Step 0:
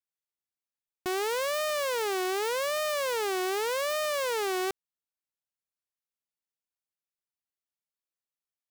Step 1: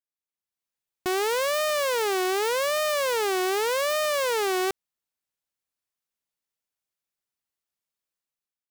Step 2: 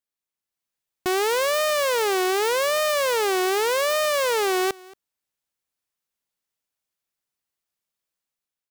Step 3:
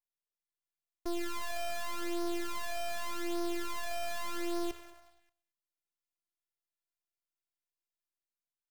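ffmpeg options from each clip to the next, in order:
-af "dynaudnorm=f=110:g=9:m=3.35,volume=0.501"
-af "aecho=1:1:227:0.0708,volume=1.41"
-filter_complex "[0:a]asplit=7[s0][s1][s2][s3][s4][s5][s6];[s1]adelay=97,afreqshift=77,volume=0.126[s7];[s2]adelay=194,afreqshift=154,volume=0.0804[s8];[s3]adelay=291,afreqshift=231,volume=0.0513[s9];[s4]adelay=388,afreqshift=308,volume=0.0331[s10];[s5]adelay=485,afreqshift=385,volume=0.0211[s11];[s6]adelay=582,afreqshift=462,volume=0.0135[s12];[s0][s7][s8][s9][s10][s11][s12]amix=inputs=7:normalize=0,aeval=exprs='max(val(0),0)':c=same,afftfilt=real='hypot(re,im)*cos(PI*b)':imag='0':win_size=512:overlap=0.75,volume=0.473"

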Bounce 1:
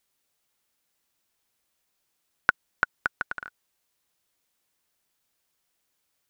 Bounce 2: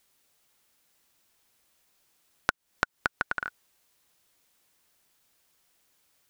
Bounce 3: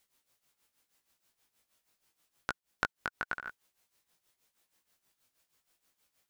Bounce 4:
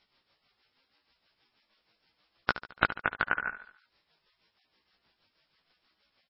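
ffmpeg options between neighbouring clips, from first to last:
-af "acompressor=threshold=0.0316:ratio=12,volume=2.24"
-af "tremolo=f=6.3:d=0.76,flanger=delay=15.5:depth=3.8:speed=0.83"
-af "aecho=1:1:72|144|216|288|360:0.224|0.114|0.0582|0.0297|0.0151,volume=2.51" -ar 16000 -c:a libmp3lame -b:a 16k

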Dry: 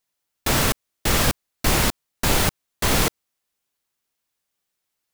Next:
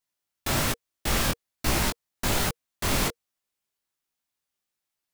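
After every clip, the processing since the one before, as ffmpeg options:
-af "flanger=delay=16.5:depth=6.1:speed=1.2,bandreject=f=470:w=12,volume=0.75"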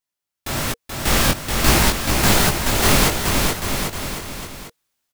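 -af "dynaudnorm=f=260:g=7:m=6.31,aecho=1:1:430|795.5|1106|1370|1595:0.631|0.398|0.251|0.158|0.1,volume=0.891"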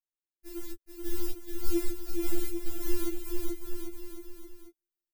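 -af "firequalizer=gain_entry='entry(320,0);entry(560,-22);entry(16000,-6)':delay=0.05:min_phase=1,afftfilt=real='re*4*eq(mod(b,16),0)':imag='im*4*eq(mod(b,16),0)':win_size=2048:overlap=0.75,volume=0.447"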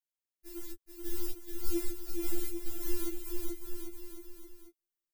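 -af "highshelf=f=4400:g=4.5,volume=0.596"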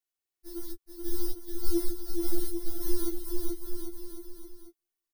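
-af "aecho=1:1:2.7:0.86"

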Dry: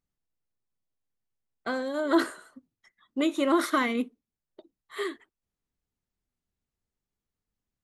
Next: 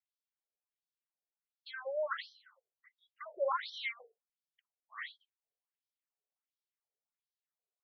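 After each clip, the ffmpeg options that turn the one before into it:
-af "afftfilt=real='re*between(b*sr/1024,530*pow(4400/530,0.5+0.5*sin(2*PI*1.4*pts/sr))/1.41,530*pow(4400/530,0.5+0.5*sin(2*PI*1.4*pts/sr))*1.41)':imag='im*between(b*sr/1024,530*pow(4400/530,0.5+0.5*sin(2*PI*1.4*pts/sr))/1.41,530*pow(4400/530,0.5+0.5*sin(2*PI*1.4*pts/sr))*1.41)':win_size=1024:overlap=0.75,volume=0.708"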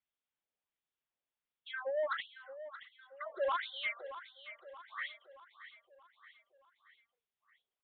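-af "aresample=8000,asoftclip=type=tanh:threshold=0.0251,aresample=44100,aecho=1:1:626|1252|1878|2504|3130:0.224|0.114|0.0582|0.0297|0.0151,volume=1.5"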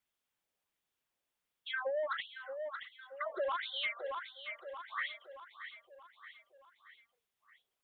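-af "acompressor=threshold=0.0112:ratio=10,volume=2"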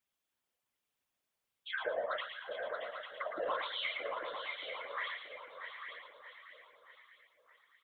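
-filter_complex "[0:a]asplit=2[s0][s1];[s1]aecho=0:1:113|226|339|452:0.531|0.143|0.0387|0.0104[s2];[s0][s2]amix=inputs=2:normalize=0,afftfilt=real='hypot(re,im)*cos(2*PI*random(0))':imag='hypot(re,im)*sin(2*PI*random(1))':win_size=512:overlap=0.75,asplit=2[s3][s4];[s4]aecho=0:1:642|848:0.188|0.398[s5];[s3][s5]amix=inputs=2:normalize=0,volume=1.68"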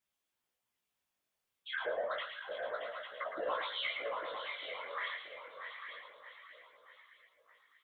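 -af "flanger=delay=15.5:depth=7.6:speed=0.29,volume=1.41"

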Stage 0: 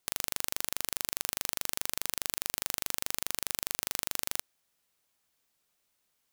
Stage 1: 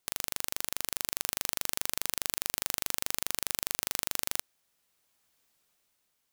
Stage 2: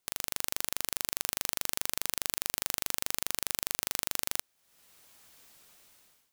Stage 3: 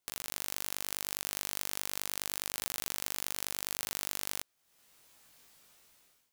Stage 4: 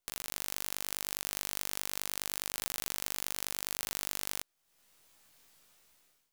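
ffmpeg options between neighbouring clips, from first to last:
-af "dynaudnorm=f=220:g=9:m=3.55,volume=0.891"
-af "dynaudnorm=f=130:g=5:m=6.31,volume=0.841"
-af "flanger=delay=17:depth=3.5:speed=0.32"
-af "aeval=exprs='if(lt(val(0),0),0.447*val(0),val(0))':c=same"

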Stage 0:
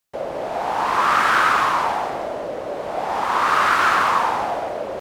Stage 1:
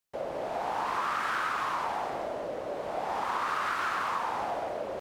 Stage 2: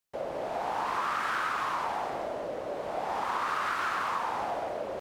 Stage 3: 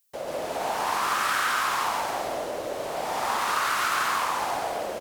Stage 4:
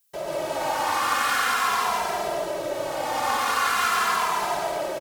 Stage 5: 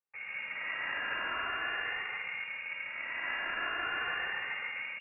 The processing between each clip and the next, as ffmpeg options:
-af "acompressor=threshold=0.1:ratio=6,volume=0.422"
-af anull
-filter_complex "[0:a]crystalizer=i=4:c=0,asplit=2[s0][s1];[s1]aecho=0:1:139.9|189.5:0.891|0.355[s2];[s0][s2]amix=inputs=2:normalize=0"
-filter_complex "[0:a]asplit=2[s0][s1];[s1]adelay=2.6,afreqshift=-0.45[s2];[s0][s2]amix=inputs=2:normalize=1,volume=1.88"
-af "aeval=exprs='(tanh(10*val(0)+0.75)-tanh(0.75))/10':c=same,lowpass=f=2400:t=q:w=0.5098,lowpass=f=2400:t=q:w=0.6013,lowpass=f=2400:t=q:w=0.9,lowpass=f=2400:t=q:w=2.563,afreqshift=-2800,volume=0.422"

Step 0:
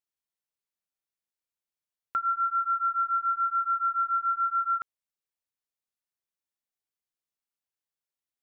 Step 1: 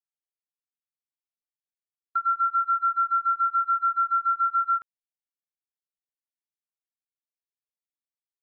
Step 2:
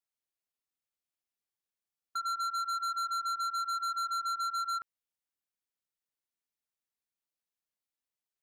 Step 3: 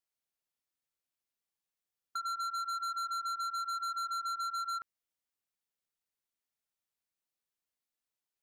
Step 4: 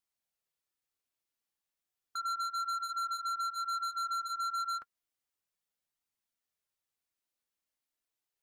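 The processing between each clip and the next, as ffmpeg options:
-af "agate=range=0.00794:threshold=0.0355:ratio=16:detection=peak,volume=1.5"
-af "asoftclip=type=tanh:threshold=0.0237,volume=1.12"
-af "acompressor=threshold=0.0178:ratio=6"
-af "flanger=delay=0.8:depth=3:regen=-61:speed=0.33:shape=triangular,volume=1.78"

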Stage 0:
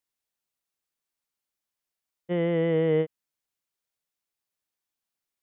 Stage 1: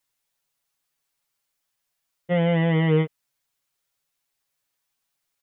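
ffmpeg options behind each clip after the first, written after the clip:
-af "equalizer=f=320:w=1.2:g=-5.5,aecho=1:1:7.2:0.85,volume=2.11"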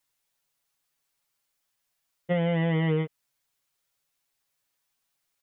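-af "acompressor=threshold=0.0794:ratio=6"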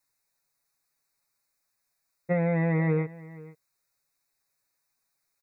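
-af "asuperstop=centerf=3100:order=12:qfactor=2.9,aecho=1:1:479:0.106"

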